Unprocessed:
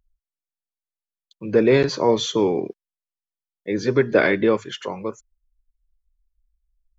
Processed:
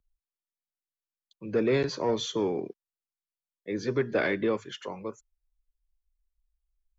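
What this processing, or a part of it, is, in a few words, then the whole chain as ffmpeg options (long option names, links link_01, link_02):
one-band saturation: -filter_complex "[0:a]acrossover=split=270|2400[link_01][link_02][link_03];[link_02]asoftclip=type=tanh:threshold=-11dB[link_04];[link_01][link_04][link_03]amix=inputs=3:normalize=0,volume=-8dB"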